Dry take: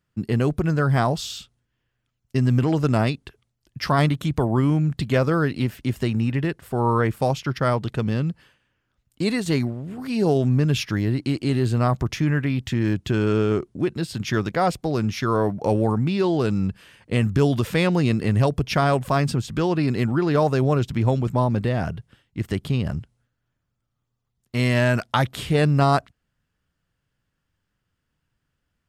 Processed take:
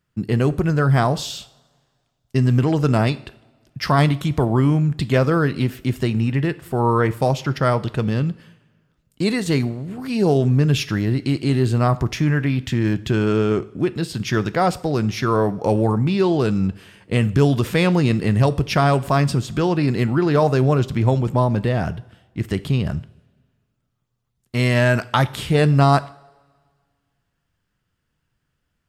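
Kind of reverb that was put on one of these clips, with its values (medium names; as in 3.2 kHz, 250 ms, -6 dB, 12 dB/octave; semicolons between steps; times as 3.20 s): two-slope reverb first 0.5 s, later 1.8 s, from -18 dB, DRR 14 dB; trim +2.5 dB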